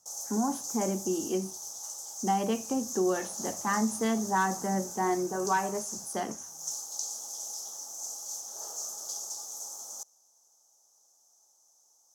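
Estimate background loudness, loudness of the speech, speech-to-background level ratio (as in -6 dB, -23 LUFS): -37.0 LUFS, -31.0 LUFS, 6.0 dB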